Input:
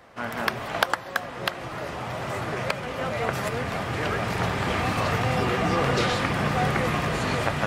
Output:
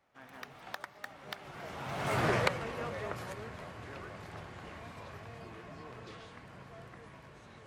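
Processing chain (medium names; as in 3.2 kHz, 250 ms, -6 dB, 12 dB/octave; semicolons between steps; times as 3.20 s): Doppler pass-by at 2.27 s, 35 m/s, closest 5.7 m; trim +1 dB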